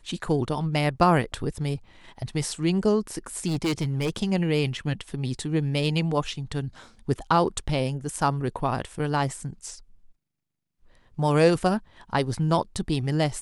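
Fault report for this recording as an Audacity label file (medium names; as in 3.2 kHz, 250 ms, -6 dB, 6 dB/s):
3.470000	4.100000	clipped -21.5 dBFS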